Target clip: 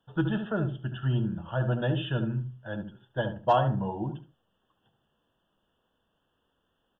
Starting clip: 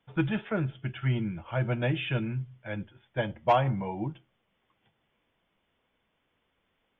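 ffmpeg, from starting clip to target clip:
ffmpeg -i in.wav -filter_complex "[0:a]asuperstop=centerf=2200:order=8:qfactor=2.4,asplit=2[link_01][link_02];[link_02]adelay=72,lowpass=frequency=1000:poles=1,volume=-6dB,asplit=2[link_03][link_04];[link_04]adelay=72,lowpass=frequency=1000:poles=1,volume=0.26,asplit=2[link_05][link_06];[link_06]adelay=72,lowpass=frequency=1000:poles=1,volume=0.26[link_07];[link_01][link_03][link_05][link_07]amix=inputs=4:normalize=0" out.wav

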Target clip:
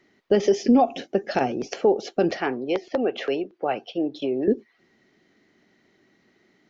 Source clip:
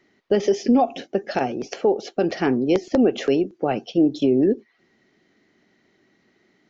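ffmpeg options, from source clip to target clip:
ffmpeg -i in.wav -filter_complex "[0:a]asettb=1/sr,asplit=3[link_01][link_02][link_03];[link_01]atrim=end=2.374[link_04];[link_02]atrim=start=2.37:end=4.48,asetpts=PTS-STARTPTS,afade=type=in:duration=0.004:curve=qsin,afade=type=out:start_time=2.106:duration=0.004:curve=qsin,acrossover=split=450 4500:gain=0.224 1 0.0794[link_05][link_06][link_07];[link_05][link_06][link_07]amix=inputs=3:normalize=0[link_08];[link_03]atrim=start=4.476[link_09];[link_04][link_08]acrossfade=duration=0.004:curve1=hsin:curve2=qsin[link_10];[link_10][link_09]acrossfade=duration=0.004:curve1=qsin:curve2=hsin" out.wav

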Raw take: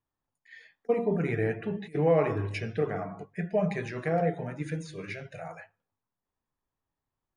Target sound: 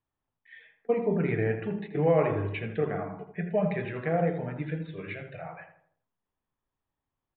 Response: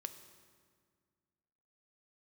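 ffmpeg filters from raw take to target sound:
-filter_complex "[0:a]asplit=2[link_01][link_02];[link_02]adelay=81,lowpass=frequency=1600:poles=1,volume=-7.5dB,asplit=2[link_03][link_04];[link_04]adelay=81,lowpass=frequency=1600:poles=1,volume=0.46,asplit=2[link_05][link_06];[link_06]adelay=81,lowpass=frequency=1600:poles=1,volume=0.46,asplit=2[link_07][link_08];[link_08]adelay=81,lowpass=frequency=1600:poles=1,volume=0.46,asplit=2[link_09][link_10];[link_10]adelay=81,lowpass=frequency=1600:poles=1,volume=0.46[link_11];[link_03][link_05][link_07][link_09][link_11]amix=inputs=5:normalize=0[link_12];[link_01][link_12]amix=inputs=2:normalize=0,aresample=8000,aresample=44100"

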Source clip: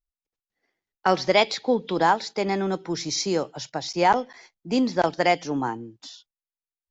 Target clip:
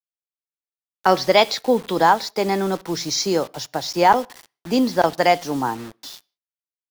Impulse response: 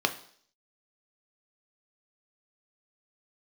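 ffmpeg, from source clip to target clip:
-filter_complex "[0:a]adynamicequalizer=threshold=0.0141:dfrequency=360:dqfactor=3.3:tfrequency=360:tqfactor=3.3:attack=5:release=100:ratio=0.375:range=2:mode=cutabove:tftype=bell,acrusher=bits=6:mix=0:aa=0.000001,asplit=2[link_01][link_02];[1:a]atrim=start_sample=2205,afade=type=out:start_time=0.24:duration=0.01,atrim=end_sample=11025[link_03];[link_02][link_03]afir=irnorm=-1:irlink=0,volume=-25dB[link_04];[link_01][link_04]amix=inputs=2:normalize=0,volume=3.5dB"

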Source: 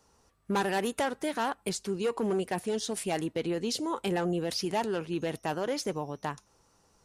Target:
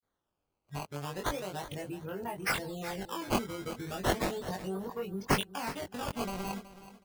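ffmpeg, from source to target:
ffmpeg -i in.wav -filter_complex "[0:a]areverse,afftdn=noise_reduction=28:noise_floor=-41,highshelf=frequency=6100:gain=-10,acrossover=split=340|5400[link_01][link_02][link_03];[link_01]alimiter=level_in=12.5dB:limit=-24dB:level=0:latency=1:release=118,volume=-12.5dB[link_04];[link_04][link_02][link_03]amix=inputs=3:normalize=0,asubboost=boost=9:cutoff=120,acompressor=threshold=-38dB:ratio=4,aexciter=amount=8.5:drive=7.5:freq=5600,acrusher=samples=14:mix=1:aa=0.000001:lfo=1:lforange=22.4:lforate=0.35,asplit=2[link_05][link_06];[link_06]adelay=21,volume=-2.5dB[link_07];[link_05][link_07]amix=inputs=2:normalize=0,aecho=1:1:373|746|1119:0.178|0.0445|0.0111" out.wav

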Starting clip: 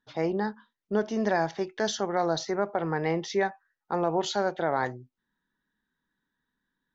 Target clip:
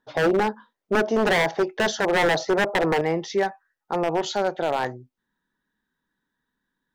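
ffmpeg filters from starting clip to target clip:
ffmpeg -i in.wav -af "asetnsamples=nb_out_samples=441:pad=0,asendcmd='3.01 equalizer g 3',equalizer=frequency=590:width=0.73:gain=13,aeval=exprs='0.168*(abs(mod(val(0)/0.168+3,4)-2)-1)':channel_layout=same,volume=1.5dB" out.wav

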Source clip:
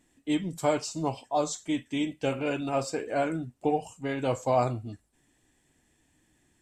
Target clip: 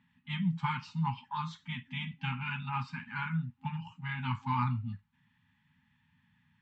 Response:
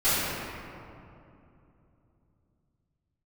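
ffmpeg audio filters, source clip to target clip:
-af "aeval=exprs='0.224*(cos(1*acos(clip(val(0)/0.224,-1,1)))-cos(1*PI/2))+0.00316*(cos(8*acos(clip(val(0)/0.224,-1,1)))-cos(8*PI/2))':channel_layout=same,highpass=100,equalizer=frequency=100:width_type=q:width=4:gain=6,equalizer=frequency=170:width_type=q:width=4:gain=8,equalizer=frequency=270:width_type=q:width=4:gain=-3,equalizer=frequency=590:width_type=q:width=4:gain=7,lowpass=frequency=3300:width=0.5412,lowpass=frequency=3300:width=1.3066,afftfilt=real='re*(1-between(b*sr/4096,260,810))':imag='im*(1-between(b*sr/4096,260,810))':win_size=4096:overlap=0.75"

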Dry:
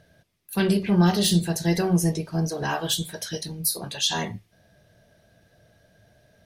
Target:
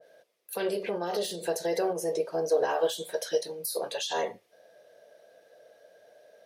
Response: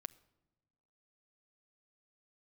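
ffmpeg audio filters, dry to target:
-af "alimiter=limit=-19.5dB:level=0:latency=1:release=82,highpass=frequency=500:width_type=q:width=4.8,adynamicequalizer=threshold=0.00891:dfrequency=1600:dqfactor=0.7:tfrequency=1600:tqfactor=0.7:attack=5:release=100:ratio=0.375:range=2:mode=cutabove:tftype=highshelf,volume=-2dB"

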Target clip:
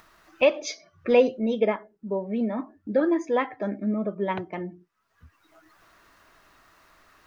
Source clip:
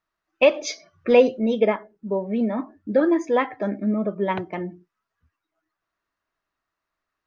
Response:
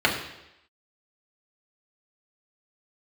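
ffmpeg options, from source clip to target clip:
-af "acompressor=mode=upward:threshold=-31dB:ratio=2.5,volume=-3.5dB"

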